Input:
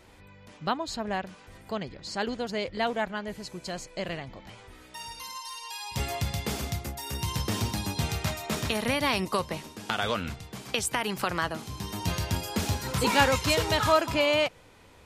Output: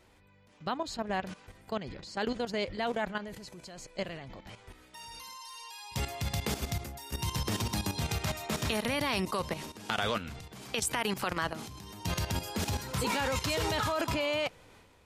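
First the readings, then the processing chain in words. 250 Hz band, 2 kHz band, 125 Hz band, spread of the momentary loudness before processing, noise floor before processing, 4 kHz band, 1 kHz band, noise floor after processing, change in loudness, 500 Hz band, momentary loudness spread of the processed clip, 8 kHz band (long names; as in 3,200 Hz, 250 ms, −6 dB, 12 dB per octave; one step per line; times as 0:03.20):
−3.5 dB, −5.0 dB, −3.5 dB, 15 LU, −53 dBFS, −4.5 dB, −5.0 dB, −61 dBFS, −4.0 dB, −5.0 dB, 15 LU, −3.0 dB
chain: output level in coarse steps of 16 dB
transient designer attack −1 dB, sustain +6 dB
level +1.5 dB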